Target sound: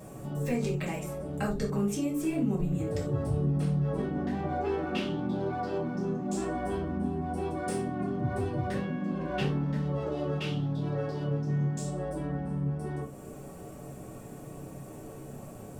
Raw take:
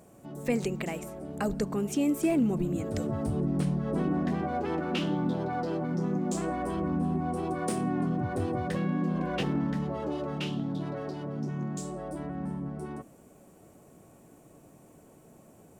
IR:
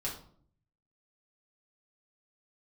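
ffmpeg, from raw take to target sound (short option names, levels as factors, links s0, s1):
-filter_complex "[0:a]acompressor=threshold=0.00398:ratio=2[s0];[1:a]atrim=start_sample=2205,atrim=end_sample=4410[s1];[s0][s1]afir=irnorm=-1:irlink=0,volume=2.51"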